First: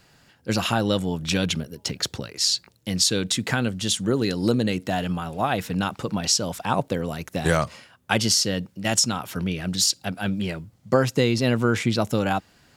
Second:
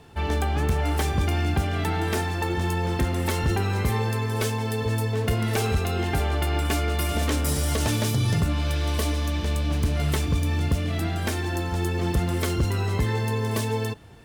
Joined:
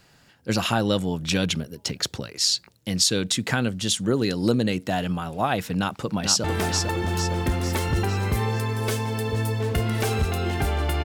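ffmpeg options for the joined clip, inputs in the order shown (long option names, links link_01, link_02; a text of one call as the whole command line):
ffmpeg -i cue0.wav -i cue1.wav -filter_complex "[0:a]apad=whole_dur=11.04,atrim=end=11.04,atrim=end=6.442[link_01];[1:a]atrim=start=1.968:end=6.57[link_02];[link_01][link_02]acrossfade=duration=0.004:curve1=hsin:curve2=hsin,asplit=2[link_03][link_04];[link_04]afade=type=in:start_time=5.78:duration=0.01,afade=type=out:start_time=6.44:duration=0.01,aecho=0:1:450|900|1350|1800|2250|2700:0.530884|0.265442|0.132721|0.0663606|0.0331803|0.0165901[link_05];[link_03][link_05]amix=inputs=2:normalize=0" out.wav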